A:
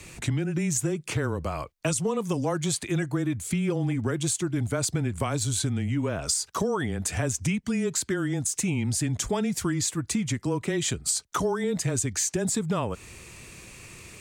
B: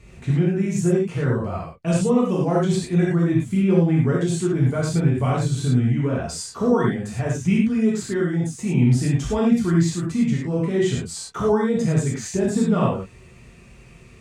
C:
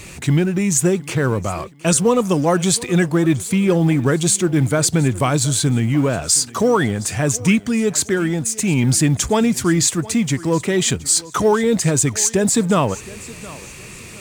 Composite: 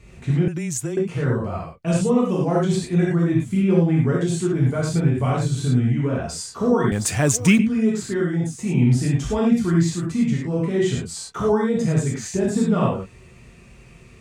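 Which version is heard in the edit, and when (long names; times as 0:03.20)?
B
0:00.48–0:00.97: punch in from A
0:06.92–0:07.59: punch in from C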